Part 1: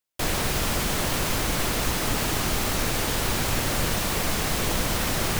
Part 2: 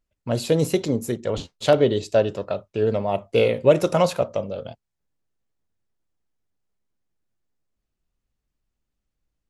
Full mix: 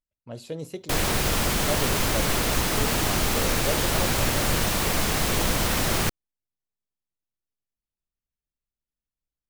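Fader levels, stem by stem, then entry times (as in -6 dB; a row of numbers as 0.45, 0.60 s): +1.5, -14.5 dB; 0.70, 0.00 s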